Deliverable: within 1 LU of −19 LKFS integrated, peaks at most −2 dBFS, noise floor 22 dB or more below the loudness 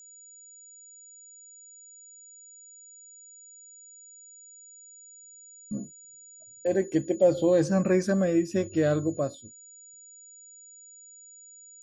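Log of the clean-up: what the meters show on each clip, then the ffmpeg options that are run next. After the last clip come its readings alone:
interfering tone 6,900 Hz; level of the tone −48 dBFS; integrated loudness −26.0 LKFS; sample peak −11.0 dBFS; target loudness −19.0 LKFS
→ -af "bandreject=frequency=6900:width=30"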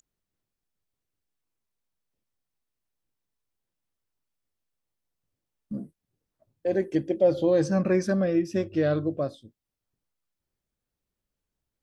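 interfering tone none found; integrated loudness −25.5 LKFS; sample peak −11.0 dBFS; target loudness −19.0 LKFS
→ -af "volume=6.5dB"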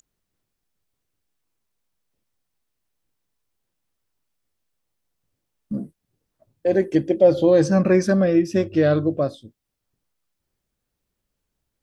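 integrated loudness −19.0 LKFS; sample peak −4.5 dBFS; background noise floor −80 dBFS

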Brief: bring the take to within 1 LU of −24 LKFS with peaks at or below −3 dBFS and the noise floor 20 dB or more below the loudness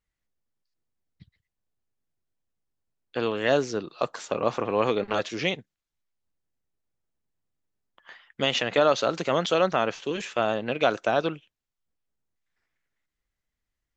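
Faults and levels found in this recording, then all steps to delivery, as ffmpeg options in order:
integrated loudness −26.0 LKFS; sample peak −8.5 dBFS; target loudness −24.0 LKFS
→ -af "volume=2dB"

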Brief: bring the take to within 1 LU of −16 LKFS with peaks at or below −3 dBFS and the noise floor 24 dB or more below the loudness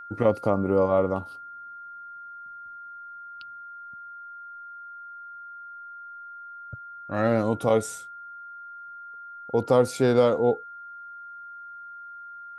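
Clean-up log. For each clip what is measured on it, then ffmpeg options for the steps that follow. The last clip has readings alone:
interfering tone 1,400 Hz; level of the tone −39 dBFS; integrated loudness −24.0 LKFS; sample peak −7.0 dBFS; target loudness −16.0 LKFS
→ -af "bandreject=frequency=1400:width=30"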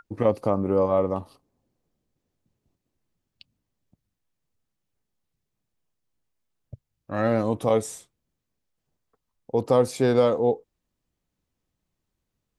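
interfering tone none found; integrated loudness −24.0 LKFS; sample peak −7.5 dBFS; target loudness −16.0 LKFS
→ -af "volume=8dB,alimiter=limit=-3dB:level=0:latency=1"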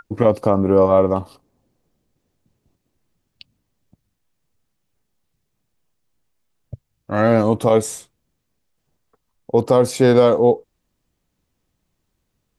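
integrated loudness −16.5 LKFS; sample peak −3.0 dBFS; background noise floor −74 dBFS

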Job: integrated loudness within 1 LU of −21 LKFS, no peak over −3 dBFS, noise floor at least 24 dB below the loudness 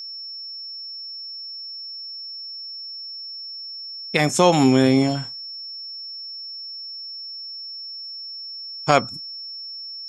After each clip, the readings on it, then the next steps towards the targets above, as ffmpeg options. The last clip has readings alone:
interfering tone 5,400 Hz; level of the tone −32 dBFS; integrated loudness −25.0 LKFS; sample peak −1.5 dBFS; target loudness −21.0 LKFS
→ -af "bandreject=frequency=5400:width=30"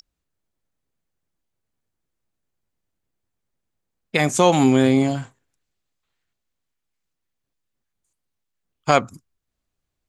interfering tone none found; integrated loudness −18.5 LKFS; sample peak −1.0 dBFS; target loudness −21.0 LKFS
→ -af "volume=-2.5dB"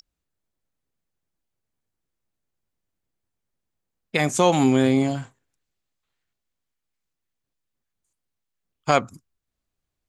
integrated loudness −21.0 LKFS; sample peak −3.5 dBFS; background noise floor −83 dBFS

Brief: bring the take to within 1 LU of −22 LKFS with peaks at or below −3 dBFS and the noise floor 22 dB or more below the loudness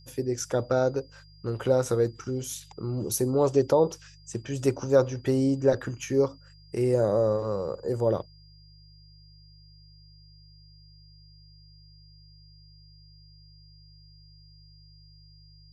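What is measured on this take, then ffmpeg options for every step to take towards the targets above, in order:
mains hum 50 Hz; hum harmonics up to 150 Hz; level of the hum −52 dBFS; interfering tone 4,800 Hz; level of the tone −57 dBFS; integrated loudness −27.0 LKFS; sample peak −9.0 dBFS; target loudness −22.0 LKFS
→ -af "bandreject=frequency=50:width_type=h:width=4,bandreject=frequency=100:width_type=h:width=4,bandreject=frequency=150:width_type=h:width=4"
-af "bandreject=frequency=4800:width=30"
-af "volume=5dB"

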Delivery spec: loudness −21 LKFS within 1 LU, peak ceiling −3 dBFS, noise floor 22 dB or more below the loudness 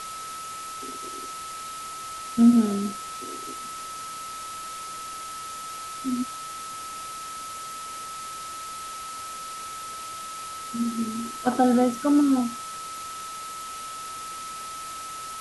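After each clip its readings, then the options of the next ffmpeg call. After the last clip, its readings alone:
interfering tone 1,300 Hz; level of the tone −35 dBFS; background noise floor −37 dBFS; target noise floor −51 dBFS; integrated loudness −29.0 LKFS; sample peak −8.0 dBFS; target loudness −21.0 LKFS
→ -af "bandreject=frequency=1300:width=30"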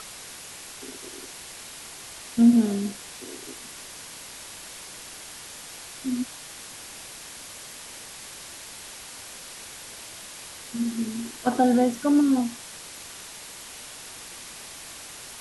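interfering tone none found; background noise floor −42 dBFS; target noise floor −52 dBFS
→ -af "afftdn=noise_reduction=10:noise_floor=-42"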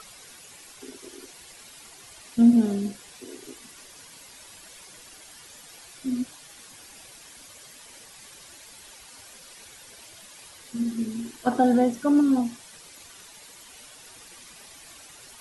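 background noise floor −48 dBFS; integrated loudness −24.0 LKFS; sample peak −8.5 dBFS; target loudness −21.0 LKFS
→ -af "volume=3dB"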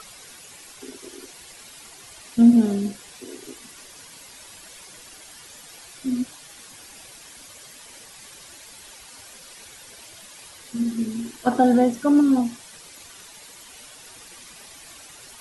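integrated loudness −21.0 LKFS; sample peak −5.5 dBFS; background noise floor −45 dBFS

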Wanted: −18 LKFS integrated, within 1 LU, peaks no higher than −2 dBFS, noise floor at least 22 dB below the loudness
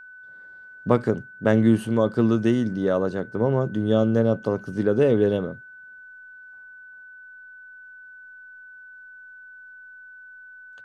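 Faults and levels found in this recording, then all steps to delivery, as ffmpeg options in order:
interfering tone 1,500 Hz; level of the tone −42 dBFS; integrated loudness −22.5 LKFS; sample peak −3.5 dBFS; target loudness −18.0 LKFS
→ -af "bandreject=frequency=1500:width=30"
-af "volume=4.5dB,alimiter=limit=-2dB:level=0:latency=1"

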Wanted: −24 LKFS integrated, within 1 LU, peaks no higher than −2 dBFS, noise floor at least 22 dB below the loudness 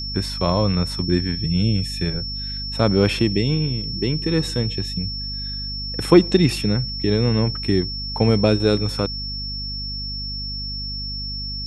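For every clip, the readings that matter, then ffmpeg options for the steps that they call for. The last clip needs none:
mains hum 50 Hz; hum harmonics up to 250 Hz; level of the hum −30 dBFS; interfering tone 5,400 Hz; level of the tone −28 dBFS; integrated loudness −21.5 LKFS; sample peak −1.0 dBFS; target loudness −24.0 LKFS
→ -af "bandreject=frequency=50:width_type=h:width=4,bandreject=frequency=100:width_type=h:width=4,bandreject=frequency=150:width_type=h:width=4,bandreject=frequency=200:width_type=h:width=4,bandreject=frequency=250:width_type=h:width=4"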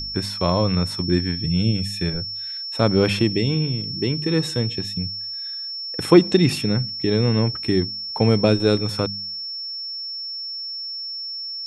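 mains hum none found; interfering tone 5,400 Hz; level of the tone −28 dBFS
→ -af "bandreject=frequency=5400:width=30"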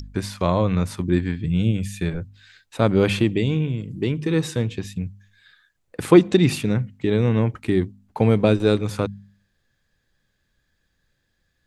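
interfering tone none found; integrated loudness −21.5 LKFS; sample peak −1.5 dBFS; target loudness −24.0 LKFS
→ -af "volume=-2.5dB"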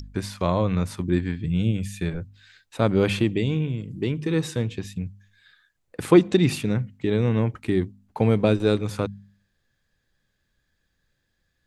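integrated loudness −24.0 LKFS; sample peak −4.0 dBFS; background noise floor −74 dBFS

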